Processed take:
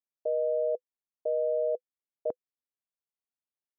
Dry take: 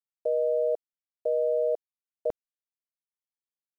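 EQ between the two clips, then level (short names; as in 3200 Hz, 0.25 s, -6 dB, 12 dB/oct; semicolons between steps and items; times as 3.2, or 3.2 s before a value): band-pass 450 Hz, Q 0.64; air absorption 230 m; notch 500 Hz, Q 12; 0.0 dB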